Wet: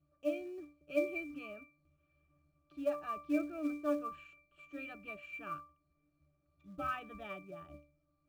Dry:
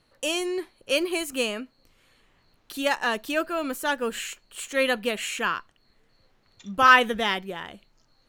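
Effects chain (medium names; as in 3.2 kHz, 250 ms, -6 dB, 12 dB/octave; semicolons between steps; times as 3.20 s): low-pass 6.6 kHz; pitch-class resonator D, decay 0.36 s; in parallel at -7 dB: short-mantissa float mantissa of 2-bit; on the sum: trim +2.5 dB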